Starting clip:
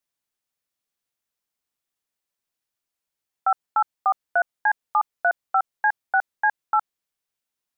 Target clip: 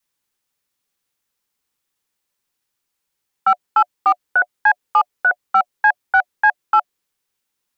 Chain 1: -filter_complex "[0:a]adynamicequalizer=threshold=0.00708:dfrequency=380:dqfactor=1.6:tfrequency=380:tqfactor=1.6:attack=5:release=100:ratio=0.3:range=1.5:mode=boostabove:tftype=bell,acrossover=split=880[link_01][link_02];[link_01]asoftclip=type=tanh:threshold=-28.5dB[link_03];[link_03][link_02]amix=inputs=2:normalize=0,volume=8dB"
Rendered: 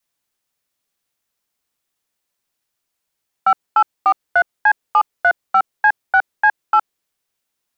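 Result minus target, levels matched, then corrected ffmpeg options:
500 Hz band +10.5 dB
-filter_complex "[0:a]adynamicequalizer=threshold=0.00708:dfrequency=380:dqfactor=1.6:tfrequency=380:tqfactor=1.6:attack=5:release=100:ratio=0.3:range=1.5:mode=boostabove:tftype=bell,asuperstop=centerf=660:order=8:qfactor=5.4,acrossover=split=880[link_01][link_02];[link_01]asoftclip=type=tanh:threshold=-28.5dB[link_03];[link_03][link_02]amix=inputs=2:normalize=0,volume=8dB"

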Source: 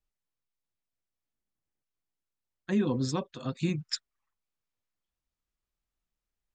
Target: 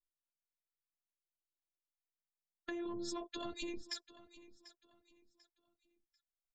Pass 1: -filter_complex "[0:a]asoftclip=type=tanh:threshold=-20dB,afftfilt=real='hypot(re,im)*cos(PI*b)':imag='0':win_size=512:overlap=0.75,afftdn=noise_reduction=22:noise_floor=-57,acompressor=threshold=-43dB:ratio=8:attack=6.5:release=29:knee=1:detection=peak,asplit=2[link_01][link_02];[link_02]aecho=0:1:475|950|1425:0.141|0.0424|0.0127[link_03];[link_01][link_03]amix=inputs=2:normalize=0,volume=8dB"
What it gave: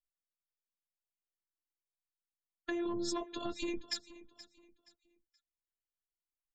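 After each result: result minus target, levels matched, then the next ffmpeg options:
echo 267 ms early; downward compressor: peak gain reduction −5.5 dB
-filter_complex "[0:a]asoftclip=type=tanh:threshold=-20dB,afftfilt=real='hypot(re,im)*cos(PI*b)':imag='0':win_size=512:overlap=0.75,afftdn=noise_reduction=22:noise_floor=-57,acompressor=threshold=-43dB:ratio=8:attack=6.5:release=29:knee=1:detection=peak,asplit=2[link_01][link_02];[link_02]aecho=0:1:742|1484|2226:0.141|0.0424|0.0127[link_03];[link_01][link_03]amix=inputs=2:normalize=0,volume=8dB"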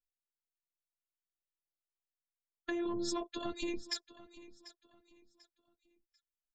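downward compressor: peak gain reduction −5.5 dB
-filter_complex "[0:a]asoftclip=type=tanh:threshold=-20dB,afftfilt=real='hypot(re,im)*cos(PI*b)':imag='0':win_size=512:overlap=0.75,afftdn=noise_reduction=22:noise_floor=-57,acompressor=threshold=-49.5dB:ratio=8:attack=6.5:release=29:knee=1:detection=peak,asplit=2[link_01][link_02];[link_02]aecho=0:1:742|1484|2226:0.141|0.0424|0.0127[link_03];[link_01][link_03]amix=inputs=2:normalize=0,volume=8dB"

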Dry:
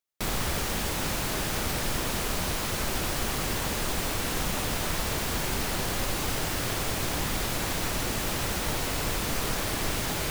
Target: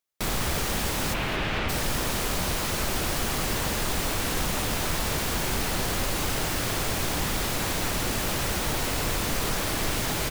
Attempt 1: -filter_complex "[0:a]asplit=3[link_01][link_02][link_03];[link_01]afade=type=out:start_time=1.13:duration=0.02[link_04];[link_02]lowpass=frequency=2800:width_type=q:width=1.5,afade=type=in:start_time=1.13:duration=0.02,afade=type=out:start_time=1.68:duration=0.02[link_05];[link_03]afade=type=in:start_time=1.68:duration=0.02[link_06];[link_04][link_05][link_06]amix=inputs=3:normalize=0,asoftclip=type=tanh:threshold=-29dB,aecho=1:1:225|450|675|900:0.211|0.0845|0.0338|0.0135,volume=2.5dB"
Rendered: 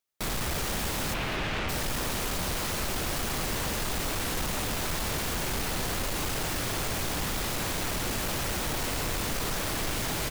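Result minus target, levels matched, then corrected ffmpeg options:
soft clipping: distortion +13 dB
-filter_complex "[0:a]asplit=3[link_01][link_02][link_03];[link_01]afade=type=out:start_time=1.13:duration=0.02[link_04];[link_02]lowpass=frequency=2800:width_type=q:width=1.5,afade=type=in:start_time=1.13:duration=0.02,afade=type=out:start_time=1.68:duration=0.02[link_05];[link_03]afade=type=in:start_time=1.68:duration=0.02[link_06];[link_04][link_05][link_06]amix=inputs=3:normalize=0,asoftclip=type=tanh:threshold=-19dB,aecho=1:1:225|450|675|900:0.211|0.0845|0.0338|0.0135,volume=2.5dB"

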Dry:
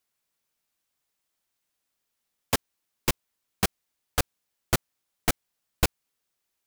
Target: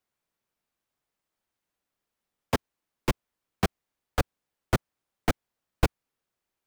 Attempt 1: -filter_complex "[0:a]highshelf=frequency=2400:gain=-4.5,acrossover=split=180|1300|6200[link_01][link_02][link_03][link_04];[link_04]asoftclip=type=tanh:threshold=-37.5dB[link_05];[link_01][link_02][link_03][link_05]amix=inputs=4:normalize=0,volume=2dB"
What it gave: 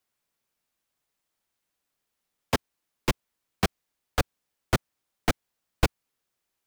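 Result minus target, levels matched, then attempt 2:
4,000 Hz band +3.0 dB
-filter_complex "[0:a]highshelf=frequency=2400:gain=-11,acrossover=split=180|1300|6200[link_01][link_02][link_03][link_04];[link_04]asoftclip=type=tanh:threshold=-37.5dB[link_05];[link_01][link_02][link_03][link_05]amix=inputs=4:normalize=0,volume=2dB"

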